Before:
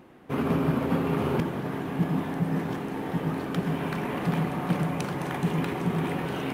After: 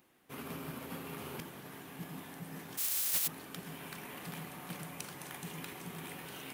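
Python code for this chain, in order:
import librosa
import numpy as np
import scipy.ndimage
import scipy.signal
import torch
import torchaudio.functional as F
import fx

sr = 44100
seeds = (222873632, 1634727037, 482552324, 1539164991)

y = fx.spec_flatten(x, sr, power=0.2, at=(2.77, 3.26), fade=0.02)
y = librosa.effects.preemphasis(y, coef=0.9, zi=[0.0])
y = 10.0 ** (-24.5 / 20.0) * (np.abs((y / 10.0 ** (-24.5 / 20.0) + 3.0) % 4.0 - 2.0) - 1.0)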